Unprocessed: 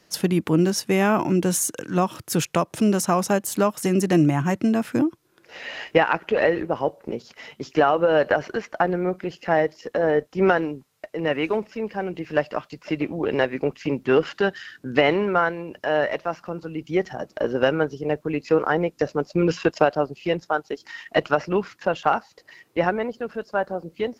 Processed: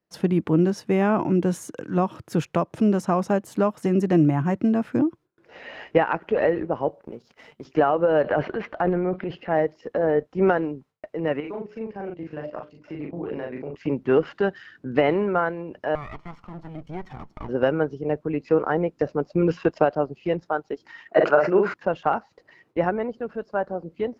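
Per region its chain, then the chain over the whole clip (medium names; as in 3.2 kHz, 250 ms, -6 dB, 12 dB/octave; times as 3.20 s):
7.01–7.65 s: companding laws mixed up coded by A + treble shelf 5.5 kHz +9 dB + compression 2.5:1, threshold -34 dBFS
8.22–9.55 s: resonant high shelf 4.7 kHz -9.5 dB, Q 1.5 + transient shaper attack -3 dB, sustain +8 dB
11.40–13.76 s: hum notches 60/120/180/240/300/360/420/480/540/600 Hz + level held to a coarse grid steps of 16 dB + doubling 40 ms -2.5 dB
15.95–17.49 s: comb filter that takes the minimum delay 0.92 ms + compression 2:1, threshold -34 dBFS
21.08–21.74 s: cabinet simulation 210–8800 Hz, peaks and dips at 260 Hz -7 dB, 370 Hz +6 dB, 610 Hz +5 dB, 1.5 kHz +6 dB, 3.3 kHz -7 dB, 5.6 kHz -8 dB + doubling 49 ms -6 dB + decay stretcher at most 87 dB/s
whole clip: gate with hold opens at -44 dBFS; low-pass 1.1 kHz 6 dB/octave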